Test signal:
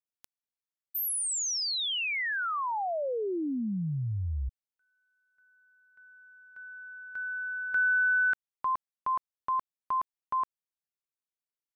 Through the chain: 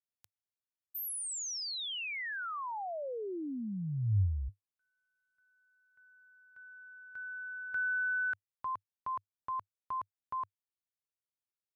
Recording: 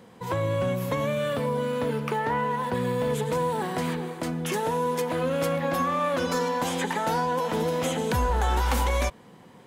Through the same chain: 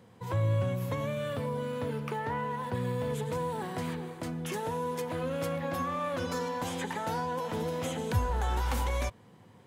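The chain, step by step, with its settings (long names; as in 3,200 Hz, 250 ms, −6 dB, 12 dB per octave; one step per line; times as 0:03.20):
parametric band 100 Hz +13 dB 0.59 octaves
level −7.5 dB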